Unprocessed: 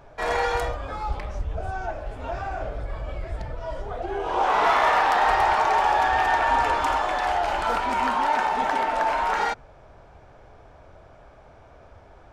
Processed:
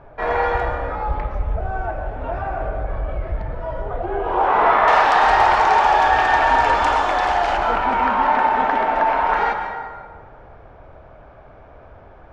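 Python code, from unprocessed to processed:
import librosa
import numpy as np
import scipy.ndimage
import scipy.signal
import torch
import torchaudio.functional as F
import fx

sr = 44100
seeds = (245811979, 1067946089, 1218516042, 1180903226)

y = fx.lowpass(x, sr, hz=fx.steps((0.0, 2000.0), (4.88, 6700.0), (7.57, 2500.0)), slope=12)
y = fx.rev_plate(y, sr, seeds[0], rt60_s=1.7, hf_ratio=0.6, predelay_ms=100, drr_db=5.5)
y = F.gain(torch.from_numpy(y), 4.5).numpy()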